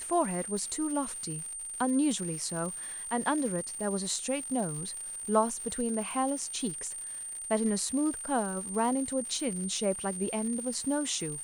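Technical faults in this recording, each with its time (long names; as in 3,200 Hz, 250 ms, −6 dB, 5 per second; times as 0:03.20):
surface crackle 210 per second −38 dBFS
whistle 8,800 Hz −37 dBFS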